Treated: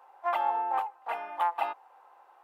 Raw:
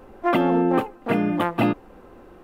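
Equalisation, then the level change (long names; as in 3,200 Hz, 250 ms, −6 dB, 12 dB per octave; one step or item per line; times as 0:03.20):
four-pole ladder high-pass 780 Hz, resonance 70%
0.0 dB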